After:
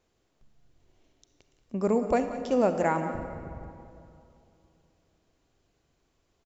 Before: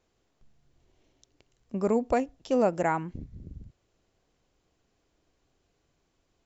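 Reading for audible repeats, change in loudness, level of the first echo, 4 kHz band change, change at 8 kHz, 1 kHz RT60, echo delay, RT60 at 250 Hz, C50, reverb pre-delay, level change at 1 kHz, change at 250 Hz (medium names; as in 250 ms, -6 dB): 1, 0.0 dB, -13.5 dB, +0.5 dB, no reading, 2.6 s, 182 ms, 2.9 s, 7.5 dB, 32 ms, +0.5 dB, +1.0 dB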